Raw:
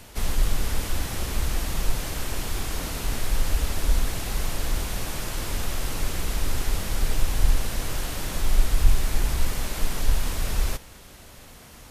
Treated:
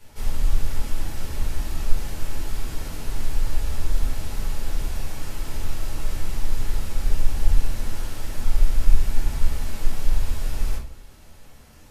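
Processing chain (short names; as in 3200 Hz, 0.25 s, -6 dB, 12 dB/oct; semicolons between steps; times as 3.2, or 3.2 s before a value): shoebox room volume 330 m³, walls furnished, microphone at 4.5 m; gain -13 dB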